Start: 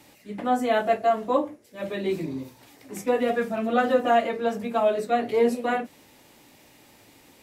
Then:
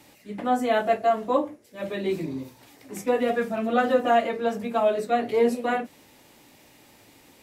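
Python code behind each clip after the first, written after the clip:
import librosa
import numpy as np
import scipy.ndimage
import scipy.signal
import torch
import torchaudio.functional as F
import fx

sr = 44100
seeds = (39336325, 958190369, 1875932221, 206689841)

y = x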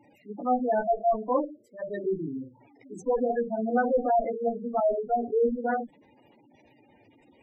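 y = fx.tube_stage(x, sr, drive_db=19.0, bias=0.75)
y = fx.hum_notches(y, sr, base_hz=50, count=4)
y = fx.spec_gate(y, sr, threshold_db=-10, keep='strong')
y = y * librosa.db_to_amplitude(3.0)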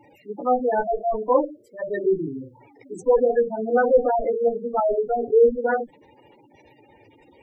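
y = x + 0.5 * np.pad(x, (int(2.2 * sr / 1000.0), 0))[:len(x)]
y = y * librosa.db_to_amplitude(5.5)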